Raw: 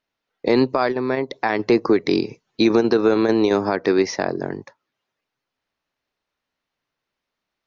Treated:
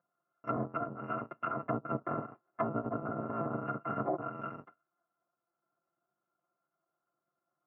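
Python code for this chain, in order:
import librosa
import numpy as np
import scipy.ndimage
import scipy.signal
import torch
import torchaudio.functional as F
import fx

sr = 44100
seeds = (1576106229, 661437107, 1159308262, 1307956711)

y = fx.bit_reversed(x, sr, seeds[0], block=256)
y = scipy.signal.sosfilt(scipy.signal.ellip(3, 1.0, 50, [150.0, 1300.0], 'bandpass', fs=sr, output='sos'), y)
y = fx.air_absorb(y, sr, metres=290.0)
y = y + 0.98 * np.pad(y, (int(5.8 * sr / 1000.0), 0))[:len(y)]
y = fx.env_lowpass_down(y, sr, base_hz=670.0, full_db=-36.0)
y = y * librosa.db_to_amplitude(8.0)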